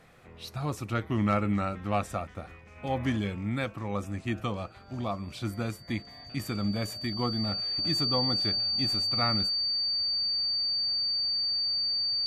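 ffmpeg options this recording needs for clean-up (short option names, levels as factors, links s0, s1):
-af "bandreject=f=4600:w=30"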